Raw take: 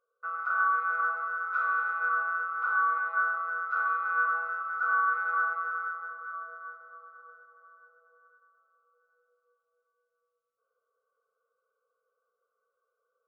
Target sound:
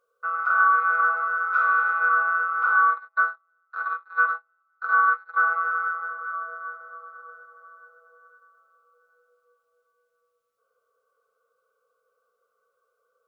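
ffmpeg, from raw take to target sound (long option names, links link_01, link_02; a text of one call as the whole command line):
ffmpeg -i in.wav -filter_complex "[0:a]asplit=3[link_01][link_02][link_03];[link_01]afade=type=out:start_time=2.89:duration=0.02[link_04];[link_02]agate=range=-43dB:threshold=-26dB:ratio=16:detection=peak,afade=type=in:start_time=2.89:duration=0.02,afade=type=out:start_time=5.36:duration=0.02[link_05];[link_03]afade=type=in:start_time=5.36:duration=0.02[link_06];[link_04][link_05][link_06]amix=inputs=3:normalize=0,volume=7.5dB" out.wav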